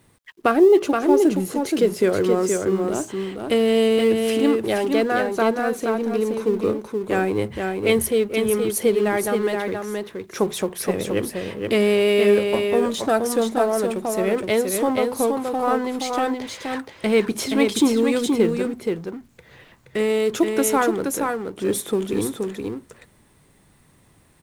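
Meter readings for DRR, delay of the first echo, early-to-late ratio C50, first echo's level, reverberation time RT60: no reverb, 474 ms, no reverb, -4.5 dB, no reverb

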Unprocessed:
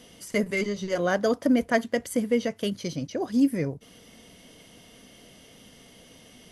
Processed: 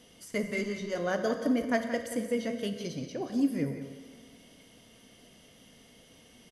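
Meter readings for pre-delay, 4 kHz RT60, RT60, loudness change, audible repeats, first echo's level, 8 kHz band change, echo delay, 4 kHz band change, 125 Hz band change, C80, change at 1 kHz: 13 ms, 1.6 s, 1.7 s, -5.5 dB, 1, -10.0 dB, -5.5 dB, 177 ms, -5.5 dB, -5.0 dB, 7.0 dB, -5.0 dB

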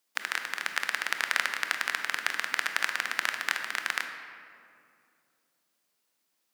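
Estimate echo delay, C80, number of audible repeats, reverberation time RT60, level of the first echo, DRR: no echo, 7.5 dB, no echo, 2.5 s, no echo, 5.5 dB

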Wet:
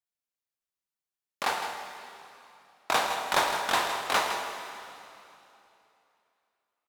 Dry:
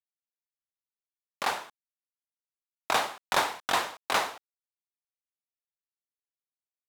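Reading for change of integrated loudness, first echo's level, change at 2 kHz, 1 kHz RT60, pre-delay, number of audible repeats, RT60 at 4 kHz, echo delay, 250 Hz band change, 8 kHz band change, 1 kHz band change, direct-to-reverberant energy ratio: +1.0 dB, -9.5 dB, +1.5 dB, 2.9 s, 7 ms, 1, 2.7 s, 160 ms, +1.5 dB, +1.5 dB, +2.0 dB, 3.5 dB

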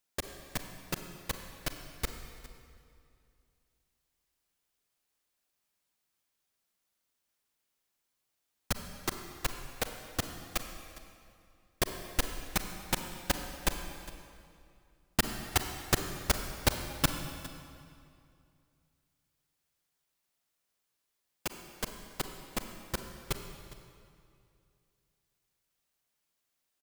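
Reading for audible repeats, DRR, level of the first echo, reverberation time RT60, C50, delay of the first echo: 1, 6.0 dB, -18.5 dB, 2.4 s, 6.5 dB, 408 ms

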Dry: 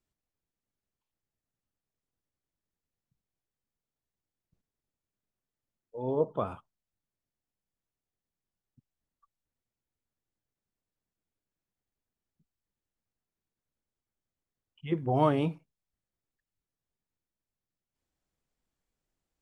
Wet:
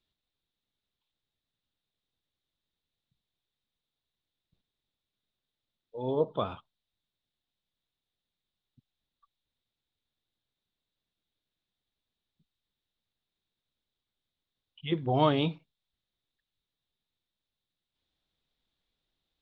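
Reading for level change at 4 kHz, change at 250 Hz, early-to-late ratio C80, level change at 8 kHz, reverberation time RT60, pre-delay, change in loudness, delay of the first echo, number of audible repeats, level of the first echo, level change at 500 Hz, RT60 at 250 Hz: +11.0 dB, 0.0 dB, no reverb, no reading, no reverb, no reverb, +0.5 dB, no echo, no echo, no echo, 0.0 dB, no reverb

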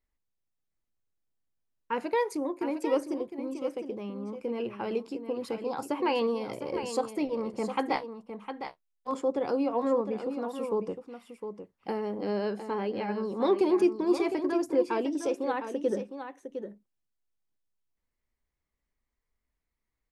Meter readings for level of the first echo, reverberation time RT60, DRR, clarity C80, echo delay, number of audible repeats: -9.0 dB, no reverb, no reverb, no reverb, 708 ms, 1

